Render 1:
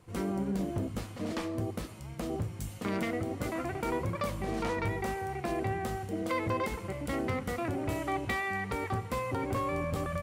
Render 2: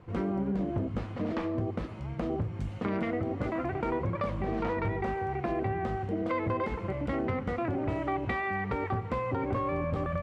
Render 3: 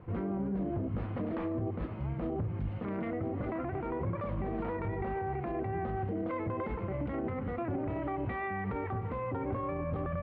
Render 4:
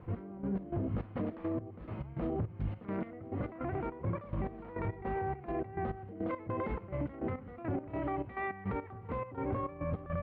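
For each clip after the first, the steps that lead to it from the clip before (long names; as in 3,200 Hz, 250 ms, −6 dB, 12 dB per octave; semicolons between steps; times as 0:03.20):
Bessel low-pass filter 1,900 Hz, order 2; downward compressor 2 to 1, threshold −37 dBFS, peak gain reduction 6 dB; level +6.5 dB
brickwall limiter −28.5 dBFS, peak gain reduction 10.5 dB; high-frequency loss of the air 420 metres; level +2.5 dB
gate pattern "x..x.xx.x." 104 BPM −12 dB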